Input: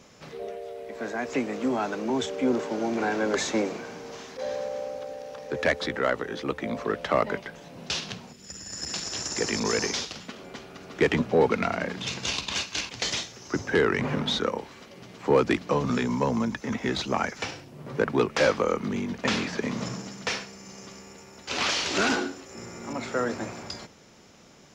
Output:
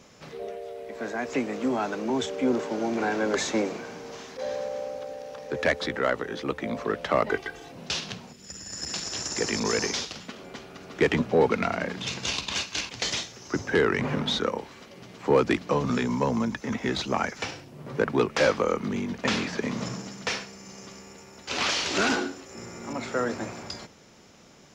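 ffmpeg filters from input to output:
-filter_complex "[0:a]asettb=1/sr,asplit=3[a][b][c];[a]atrim=end=7.294[d];[b]atrim=start=7.29:end=7.72,asetpts=PTS-STARTPTS,afade=t=in:d=0.004:c=qsin,afade=t=out:st=0.426:d=0.004:c=qsin,aecho=1:1:2.6:0.99,atrim=end_sample=18963[e];[c]atrim=start=7.716[f];[d][e]acrossfade=d=0.004:c1=hsin:c2=qsin[g];[g][f]acrossfade=d=0.004:c1=qsin:c2=hsin"

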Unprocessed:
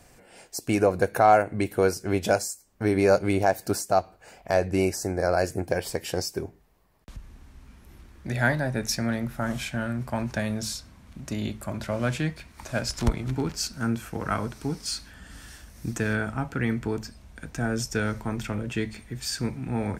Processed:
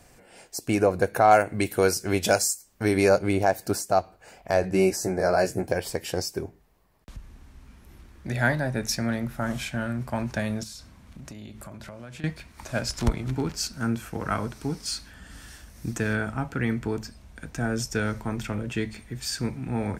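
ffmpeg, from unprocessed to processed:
-filter_complex "[0:a]asettb=1/sr,asplit=3[a][b][c];[a]atrim=end=1.314[d];[b]atrim=start=1.31:end=3.09,asetpts=PTS-STARTPTS,afade=t=in:d=0.004:c=qsin,afade=t=out:st=1.776:d=0.004:c=qsin,highshelf=f=2.1k:g=8[e];[c]atrim=start=3.086[f];[d][e]acrossfade=d=0.004:c1=hsin:c2=qsin[g];[g][f]acrossfade=d=0.004:c1=qsin:c2=hsin,asettb=1/sr,asplit=3[h][i][j];[h]atrim=end=4.624[k];[i]atrim=start=4.62:end=5.72,asetpts=PTS-STARTPTS,afade=t=in:d=0.004:c=qsin,afade=t=out:st=1.096:d=0.004:c=qsin,asplit=2[l][m];[m]adelay=16,volume=-3.5dB[n];[l][n]amix=inputs=2:normalize=0,atrim=end_sample=48510[o];[j]atrim=start=5.716[p];[k][o]acrossfade=d=0.004:c1=hsin:c2=qsin[q];[q][p]acrossfade=d=0.004:c1=qsin:c2=hsin,asettb=1/sr,asplit=3[r][s][t];[r]atrim=end=10.634[u];[s]atrim=start=10.63:end=12.24,asetpts=PTS-STARTPTS,afade=t=in:d=0.004:c=qsin,afade=t=out:st=1.606:d=0.004:c=qsin,acompressor=threshold=-37dB:ratio=10:attack=3.2:release=140:knee=1:detection=peak[v];[t]atrim=start=12.236[w];[u][v]acrossfade=d=0.004:c1=hsin:c2=qsin[x];[x][w]acrossfade=d=0.004:c1=qsin:c2=hsin"

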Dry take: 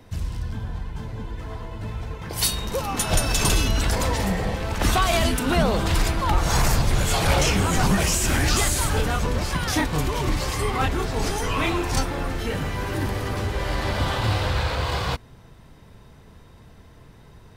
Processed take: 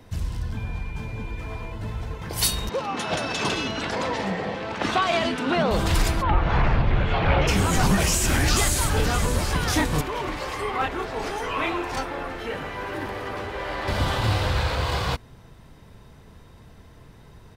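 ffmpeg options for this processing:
-filter_complex "[0:a]asettb=1/sr,asplit=3[a][b][c];[a]atrim=end=0.574[d];[b]atrim=start=0.57:end=1.72,asetpts=PTS-STARTPTS,afade=t=in:d=0.004:c=qsin,afade=t=out:st=1.146:d=0.004:c=qsin,aeval=exprs='val(0)+0.00708*sin(2*PI*2400*n/s)':c=same[e];[c]atrim=start=1.716[f];[d][e]acrossfade=d=0.004:c1=hsin:c2=qsin[g];[g][f]acrossfade=d=0.004:c1=qsin:c2=hsin,asettb=1/sr,asplit=3[h][i][j];[h]atrim=end=2.694[k];[i]atrim=start=2.69:end=5.71,asetpts=PTS-STARTPTS,afade=t=in:d=0.004:c=qsin,afade=t=out:st=3.016:d=0.004:c=qsin,highpass=200,lowpass=3.9k[l];[j]atrim=start=5.706[m];[k][l]acrossfade=d=0.004:c1=hsin:c2=qsin[n];[n][m]acrossfade=d=0.004:c1=qsin:c2=hsin,asplit=3[o][p][q];[o]afade=t=out:st=6.21:d=0.02[r];[p]lowpass=f=2.9k:w=0.5412,lowpass=f=2.9k:w=1.3066,afade=t=in:st=6.21:d=0.02,afade=t=out:st=7.47:d=0.02[s];[q]afade=t=in:st=7.47:d=0.02[t];[r][s][t]amix=inputs=3:normalize=0,asplit=2[u][v];[v]afade=t=in:st=8.42:d=0.01,afade=t=out:st=9.45:d=0.01,aecho=0:1:570|1140|1710|2280:0.316228|0.126491|0.0505964|0.0202386[w];[u][w]amix=inputs=2:normalize=0,asettb=1/sr,asplit=3[x][y][z];[x]atrim=end=10.014[aa];[y]atrim=start=10.01:end=13.88,asetpts=PTS-STARTPTS,afade=t=in:d=0.004:c=qsin,afade=t=out:st=3.866:d=0.004:c=qsin,bass=f=250:g=-13,treble=f=4k:g=-12[ab];[z]atrim=start=13.876[ac];[aa][ab]acrossfade=d=0.004:c1=hsin:c2=qsin[ad];[ad][ac]acrossfade=d=0.004:c1=qsin:c2=hsin"

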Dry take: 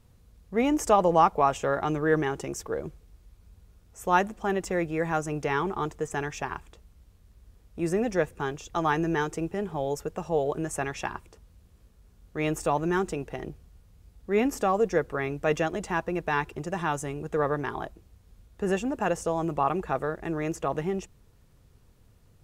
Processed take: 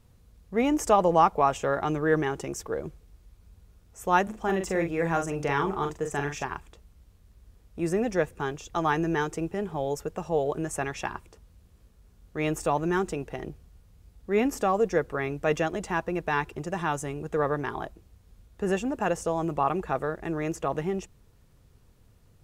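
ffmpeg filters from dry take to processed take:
-filter_complex "[0:a]asettb=1/sr,asplit=3[a][b][c];[a]atrim=end=4.234[d];[b]atrim=start=4.23:end=6.46,asetpts=PTS-STARTPTS,afade=t=in:d=0.004:c=qsin,afade=t=out:st=2.226:d=0.004:c=qsin,asplit=2[e][f];[f]adelay=42,volume=-6dB[g];[e][g]amix=inputs=2:normalize=0,atrim=end_sample=98343[h];[c]atrim=start=6.456[i];[d][h]acrossfade=d=0.004:c1=hsin:c2=qsin[j];[j][i]acrossfade=d=0.004:c1=qsin:c2=hsin"

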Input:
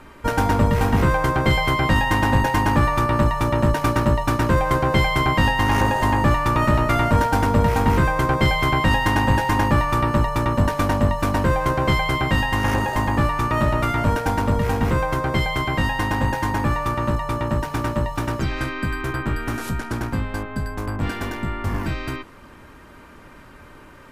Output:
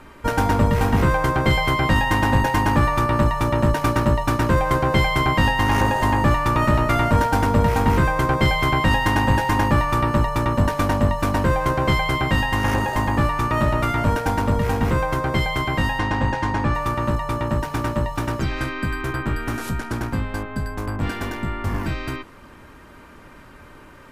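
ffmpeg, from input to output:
-filter_complex "[0:a]asettb=1/sr,asplit=3[a][b][c];[a]atrim=end=15.994[d];[b]atrim=start=15.99:end=16.75,asetpts=PTS-STARTPTS,afade=t=in:d=0.004:c=qsin,afade=t=out:st=0.756:d=0.004:c=qsin,lowpass=5.7k[e];[c]atrim=start=16.746[f];[d][e]acrossfade=d=0.004:c1=hsin:c2=qsin[g];[g][f]acrossfade=d=0.004:c1=qsin:c2=hsin"

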